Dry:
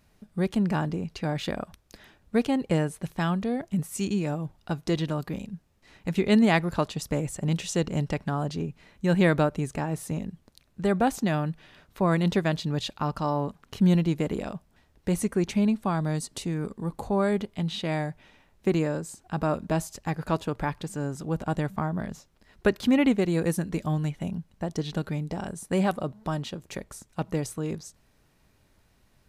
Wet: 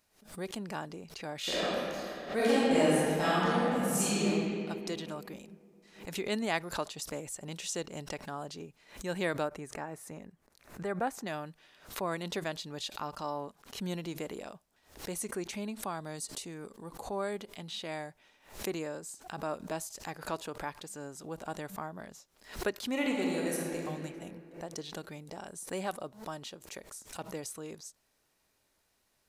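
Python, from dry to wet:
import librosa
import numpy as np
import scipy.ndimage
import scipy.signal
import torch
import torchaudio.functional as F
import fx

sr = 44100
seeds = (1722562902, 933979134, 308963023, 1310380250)

y = fx.reverb_throw(x, sr, start_s=1.39, length_s=2.86, rt60_s=2.7, drr_db=-12.0)
y = fx.high_shelf_res(y, sr, hz=2500.0, db=-6.5, q=1.5, at=(9.48, 11.27))
y = fx.reverb_throw(y, sr, start_s=22.91, length_s=0.95, rt60_s=2.5, drr_db=-2.0)
y = fx.bass_treble(y, sr, bass_db=-13, treble_db=6)
y = fx.pre_swell(y, sr, db_per_s=130.0)
y = F.gain(torch.from_numpy(y), -8.0).numpy()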